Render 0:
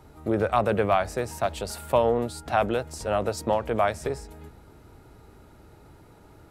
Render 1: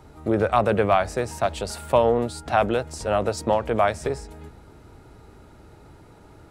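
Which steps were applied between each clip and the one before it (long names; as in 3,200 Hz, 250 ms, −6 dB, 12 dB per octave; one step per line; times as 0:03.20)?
parametric band 13,000 Hz −12.5 dB 0.27 octaves
level +3 dB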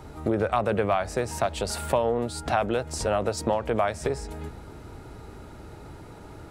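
downward compressor 2.5 to 1, threshold −30 dBFS, peak gain reduction 11.5 dB
level +5 dB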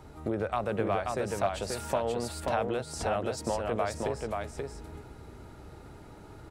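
single-tap delay 533 ms −3.5 dB
level −6.5 dB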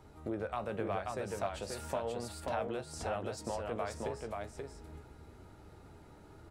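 flanger 0.89 Hz, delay 9.1 ms, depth 5.1 ms, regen +68%
level −2.5 dB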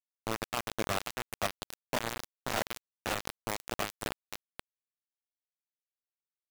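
bit reduction 5 bits
level +2.5 dB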